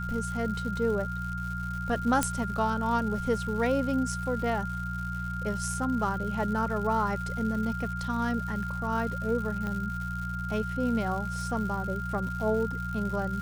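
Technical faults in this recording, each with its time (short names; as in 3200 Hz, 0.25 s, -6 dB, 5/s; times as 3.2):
crackle 250/s -37 dBFS
hum 60 Hz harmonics 3 -35 dBFS
tone 1400 Hz -35 dBFS
2.23 pop -10 dBFS
9.67 pop -22 dBFS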